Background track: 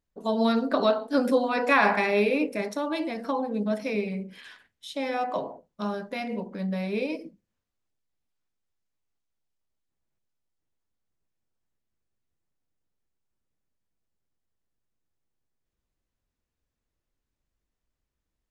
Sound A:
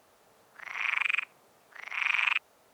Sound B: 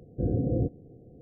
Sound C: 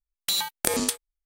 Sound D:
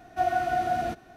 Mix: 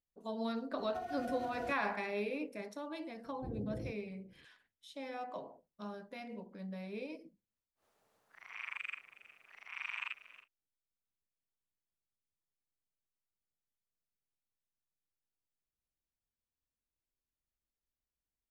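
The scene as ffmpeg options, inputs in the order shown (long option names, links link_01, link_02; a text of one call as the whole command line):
ffmpeg -i bed.wav -i cue0.wav -i cue1.wav -i cue2.wav -i cue3.wav -filter_complex "[0:a]volume=-14.5dB[link_01];[4:a]acompressor=threshold=-30dB:ratio=6:attack=3.2:release=140:knee=1:detection=peak[link_02];[1:a]asplit=6[link_03][link_04][link_05][link_06][link_07][link_08];[link_04]adelay=363,afreqshift=57,volume=-16.5dB[link_09];[link_05]adelay=726,afreqshift=114,volume=-21.2dB[link_10];[link_06]adelay=1089,afreqshift=171,volume=-26dB[link_11];[link_07]adelay=1452,afreqshift=228,volume=-30.7dB[link_12];[link_08]adelay=1815,afreqshift=285,volume=-35.4dB[link_13];[link_03][link_09][link_10][link_11][link_12][link_13]amix=inputs=6:normalize=0[link_14];[link_02]atrim=end=1.16,asetpts=PTS-STARTPTS,volume=-9.5dB,afade=type=in:duration=0.004:curve=hsin,afade=type=out:start_time=1.156:duration=0.004:curve=hsin,adelay=780[link_15];[2:a]atrim=end=1.21,asetpts=PTS-STARTPTS,volume=-16.5dB,afade=type=in:duration=0.004:curve=hsin,afade=type=out:start_time=1.206:duration=0.004:curve=hsin,adelay=3240[link_16];[link_14]atrim=end=2.73,asetpts=PTS-STARTPTS,volume=-14.5dB,afade=type=in:duration=0.1,afade=type=out:start_time=2.63:duration=0.1,adelay=7750[link_17];[link_01][link_15][link_16][link_17]amix=inputs=4:normalize=0" out.wav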